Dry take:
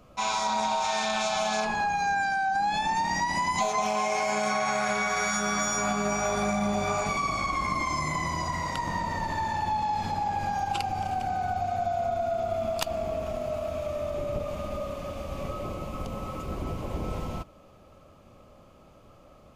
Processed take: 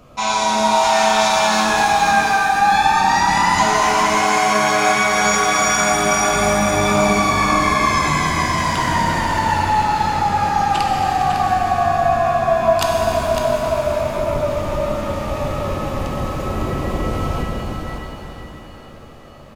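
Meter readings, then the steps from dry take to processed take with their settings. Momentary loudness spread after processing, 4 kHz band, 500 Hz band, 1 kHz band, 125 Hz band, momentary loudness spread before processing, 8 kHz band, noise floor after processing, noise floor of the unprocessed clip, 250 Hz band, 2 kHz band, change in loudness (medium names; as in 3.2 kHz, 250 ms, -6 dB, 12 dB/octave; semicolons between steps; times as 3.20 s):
9 LU, +12.5 dB, +11.5 dB, +12.0 dB, +11.5 dB, 9 LU, +12.0 dB, -38 dBFS, -54 dBFS, +11.5 dB, +12.0 dB, +12.0 dB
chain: on a send: delay 554 ms -8 dB; on the sum: pitch-shifted reverb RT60 3.4 s, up +7 st, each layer -8 dB, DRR -0.5 dB; trim +7.5 dB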